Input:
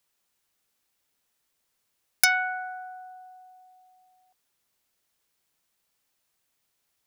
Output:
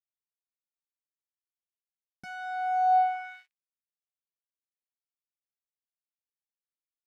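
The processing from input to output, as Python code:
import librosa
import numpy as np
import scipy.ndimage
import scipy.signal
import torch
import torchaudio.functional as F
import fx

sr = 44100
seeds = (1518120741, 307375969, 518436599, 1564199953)

y = fx.fuzz(x, sr, gain_db=41.0, gate_db=-48.0)
y = fx.filter_sweep_bandpass(y, sr, from_hz=200.0, to_hz=2900.0, start_s=2.36, end_s=3.61, q=2.9)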